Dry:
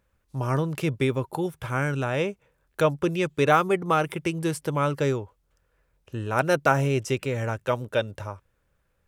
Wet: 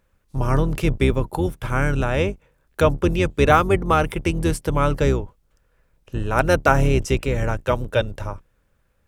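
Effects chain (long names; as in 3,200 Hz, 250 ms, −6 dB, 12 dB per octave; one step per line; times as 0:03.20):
sub-octave generator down 2 octaves, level +1 dB
level +4 dB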